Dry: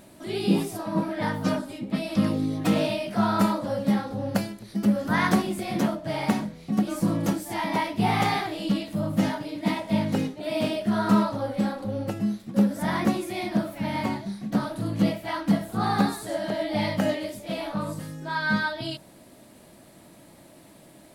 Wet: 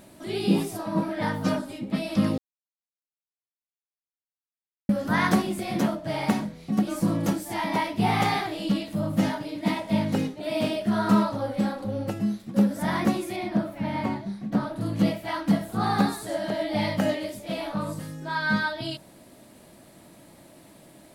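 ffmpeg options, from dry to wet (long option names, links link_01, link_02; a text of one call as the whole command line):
ffmpeg -i in.wav -filter_complex "[0:a]asettb=1/sr,asplit=3[link_01][link_02][link_03];[link_01]atrim=end=13.364[link_04];[link_02]atrim=start=13.36:end=14.81,asetpts=PTS-STARTPTS,afade=type=in:duration=0.004:curve=qsin,afade=type=out:start_time=1.446:duration=0.004:curve=qsin,highshelf=frequency=3400:gain=-9.5[link_05];[link_03]atrim=start=14.806[link_06];[link_04][link_05]acrossfade=duration=0.004:curve1=hsin:curve2=qsin[link_07];[link_07][link_06]acrossfade=duration=0.004:curve1=qsin:curve2=hsin,asplit=3[link_08][link_09][link_10];[link_08]atrim=end=2.38,asetpts=PTS-STARTPTS,afade=type=out:start_time=2.376:duration=0.004:curve=hsin[link_11];[link_09]atrim=start=2.38:end=4.89,asetpts=PTS-STARTPTS,volume=0[link_12];[link_10]atrim=start=4.89,asetpts=PTS-STARTPTS,afade=type=in:duration=0.004:curve=hsin[link_13];[link_11][link_12][link_13]concat=n=3:v=0:a=1" out.wav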